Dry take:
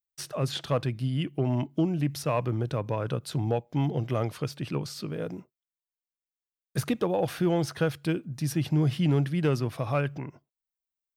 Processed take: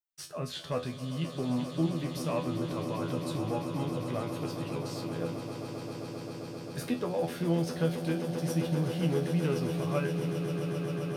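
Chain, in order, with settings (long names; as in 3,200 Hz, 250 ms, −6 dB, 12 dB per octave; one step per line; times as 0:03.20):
tuned comb filter 83 Hz, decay 0.24 s, harmonics all, mix 90%
echo that builds up and dies away 132 ms, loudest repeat 8, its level −12.5 dB
level +1.5 dB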